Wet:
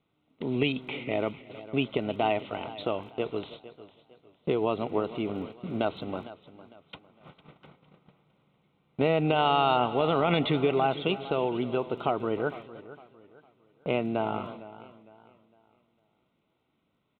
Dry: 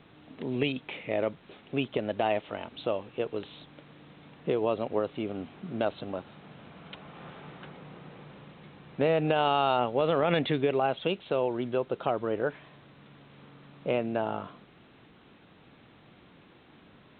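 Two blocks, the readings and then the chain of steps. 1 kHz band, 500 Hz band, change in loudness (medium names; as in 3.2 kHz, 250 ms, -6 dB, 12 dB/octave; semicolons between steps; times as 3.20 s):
+2.0 dB, 0.0 dB, +1.0 dB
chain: feedback delay 315 ms, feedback 40%, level -17.5 dB; dynamic bell 540 Hz, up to -8 dB, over -45 dBFS, Q 5.2; Butterworth band-stop 1.7 kHz, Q 4.7; crackle 20 per s -56 dBFS; gate -43 dBFS, range -22 dB; modulated delay 456 ms, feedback 34%, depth 70 cents, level -16.5 dB; trim +2.5 dB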